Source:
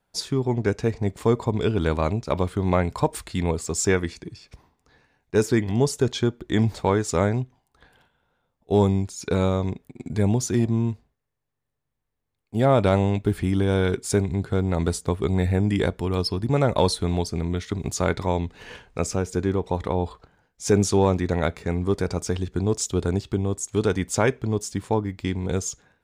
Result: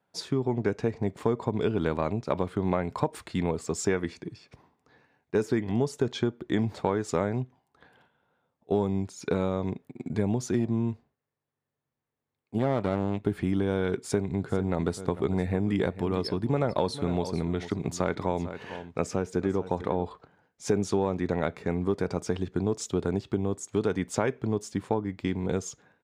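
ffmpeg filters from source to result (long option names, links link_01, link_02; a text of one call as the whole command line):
ffmpeg -i in.wav -filter_complex "[0:a]asettb=1/sr,asplit=3[link_01][link_02][link_03];[link_01]atrim=end=12.584[link_04];[link_02]atrim=start=12.58:end=13.23,asetpts=PTS-STARTPTS,afade=type=in:duration=0.004:curve=qsin,afade=type=out:start_time=0.646:duration=0.004:curve=qsin,aeval=exprs='if(lt(val(0),0),0.251*val(0),val(0))':channel_layout=same[link_05];[link_03]atrim=start=13.226[link_06];[link_04][link_05]acrossfade=duration=0.004:curve1=hsin:curve2=qsin[link_07];[link_07][link_06]acrossfade=duration=0.004:curve1=qsin:curve2=hsin,asplit=3[link_08][link_09][link_10];[link_08]afade=type=out:start_time=14.39:duration=0.02[link_11];[link_09]aecho=1:1:447:0.168,afade=type=in:start_time=14.39:duration=0.02,afade=type=out:start_time=20.05:duration=0.02[link_12];[link_10]afade=type=in:start_time=20.05:duration=0.02[link_13];[link_11][link_12][link_13]amix=inputs=3:normalize=0,highpass=130,highshelf=frequency=3900:gain=-11.5,acompressor=threshold=-22dB:ratio=4" out.wav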